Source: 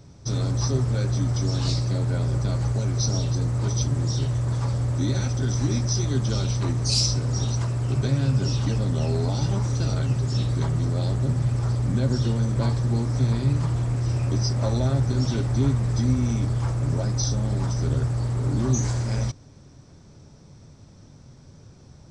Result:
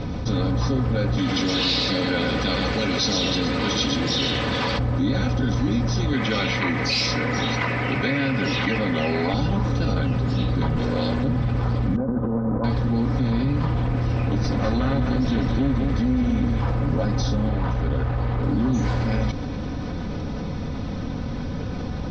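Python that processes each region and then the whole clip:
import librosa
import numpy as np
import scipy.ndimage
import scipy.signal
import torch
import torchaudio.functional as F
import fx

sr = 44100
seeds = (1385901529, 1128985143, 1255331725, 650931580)

y = fx.chain(x, sr, fx.weighting(curve='D'),
    fx.echo_single(ms=121, db=-5.5), at=(1.18, 4.79))
y = fx.chain(y, sr, fx.highpass(hz=290.0, slope=6),
    fx.peak_eq(hz=2100.0, db=15.0, octaves=0.62), at=(6.13, 9.34))
y = fx.chain(y, sr, fx.lower_of_two(delay_ms=1.9),
    fx.tilt_eq(slope=1.5), at=(10.76, 11.24))
y = fx.chain(y, sr, fx.lowpass(hz=1200.0, slope=24),
    fx.low_shelf(hz=140.0, db=-11.0),
    fx.over_compress(threshold_db=-30.0, ratio=-0.5), at=(11.96, 12.64))
y = fx.chain(y, sr, fx.lower_of_two(delay_ms=0.5),
    fx.echo_single(ms=205, db=-7.0), at=(14.23, 16.6))
y = fx.chain(y, sr, fx.median_filter(points=9),
    fx.peak_eq(hz=220.0, db=-6.5, octaves=1.9), at=(17.49, 18.43))
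y = scipy.signal.sosfilt(scipy.signal.butter(4, 3800.0, 'lowpass', fs=sr, output='sos'), y)
y = y + 0.55 * np.pad(y, (int(4.0 * sr / 1000.0), 0))[:len(y)]
y = fx.env_flatten(y, sr, amount_pct=70)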